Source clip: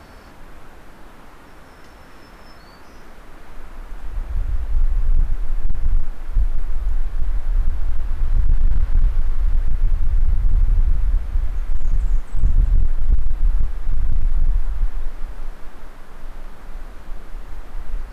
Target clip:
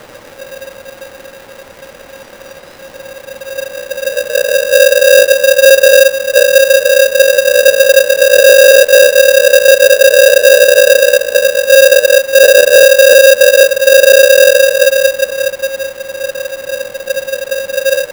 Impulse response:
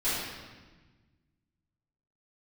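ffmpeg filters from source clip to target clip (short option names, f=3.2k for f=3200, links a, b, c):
-af "aeval=exprs='val(0)*sgn(sin(2*PI*540*n/s))':c=same,volume=7dB"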